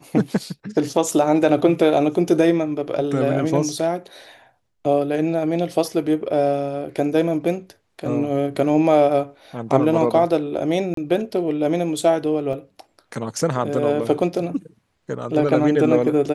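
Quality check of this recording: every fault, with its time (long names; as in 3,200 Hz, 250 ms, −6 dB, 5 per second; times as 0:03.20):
0:10.94–0:10.97: drop-out 33 ms
0:12.53: drop-out 2.5 ms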